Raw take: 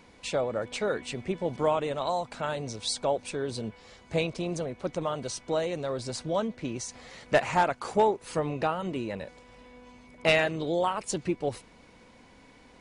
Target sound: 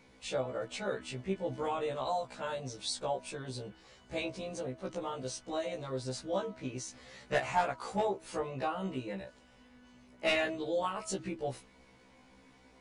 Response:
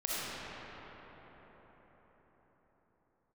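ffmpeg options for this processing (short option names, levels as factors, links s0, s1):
-filter_complex "[0:a]bandreject=f=322.5:t=h:w=4,bandreject=f=645:t=h:w=4,bandreject=f=967.5:t=h:w=4,bandreject=f=1290:t=h:w=4,asplit=2[s0][s1];[1:a]atrim=start_sample=2205,atrim=end_sample=3087,asetrate=83790,aresample=44100[s2];[s1][s2]afir=irnorm=-1:irlink=0,volume=0.1[s3];[s0][s3]amix=inputs=2:normalize=0,afftfilt=real='re*1.73*eq(mod(b,3),0)':imag='im*1.73*eq(mod(b,3),0)':win_size=2048:overlap=0.75,volume=0.668"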